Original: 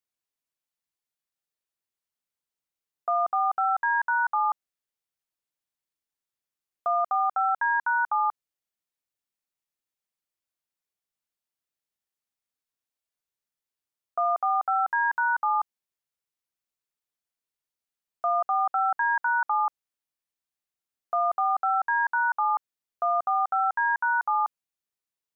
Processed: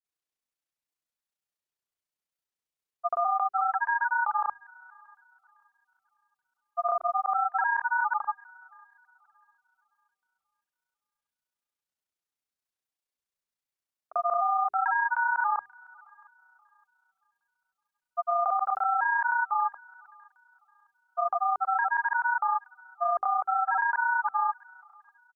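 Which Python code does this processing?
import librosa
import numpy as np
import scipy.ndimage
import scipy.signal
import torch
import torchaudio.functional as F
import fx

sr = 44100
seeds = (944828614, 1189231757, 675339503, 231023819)

p1 = x + fx.echo_wet_highpass(x, sr, ms=577, feedback_pct=32, hz=1600.0, wet_db=-20.0, dry=0)
p2 = fx.granulator(p1, sr, seeds[0], grain_ms=58.0, per_s=30.0, spray_ms=100.0, spread_st=0)
y = fx.hum_notches(p2, sr, base_hz=50, count=8)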